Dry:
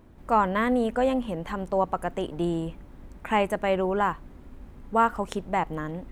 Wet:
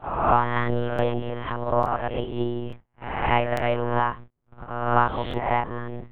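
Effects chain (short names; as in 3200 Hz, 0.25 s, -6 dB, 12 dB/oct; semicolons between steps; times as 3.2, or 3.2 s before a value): spectral swells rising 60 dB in 0.84 s; gate -36 dBFS, range -41 dB; transient shaper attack +7 dB, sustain +1 dB; in parallel at +2 dB: upward compressor, threshold -23 dBFS; on the sum: monotone LPC vocoder at 8 kHz 120 Hz; crackling interface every 0.87 s, samples 1024, repeat, from 0.94; gain -8.5 dB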